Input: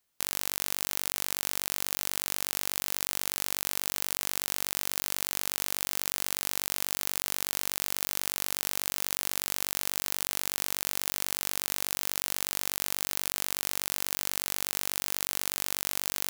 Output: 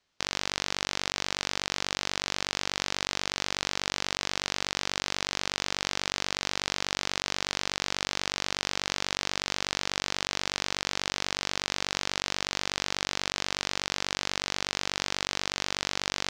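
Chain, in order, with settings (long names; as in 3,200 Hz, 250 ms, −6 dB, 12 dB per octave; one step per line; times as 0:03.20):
low-pass filter 5,700 Hz 24 dB per octave
level +6 dB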